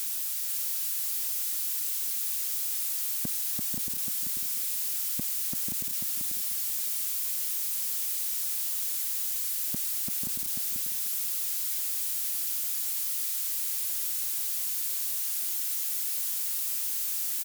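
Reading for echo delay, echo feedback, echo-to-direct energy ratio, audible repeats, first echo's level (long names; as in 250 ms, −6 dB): 490 ms, 20%, −5.0 dB, 2, −5.0 dB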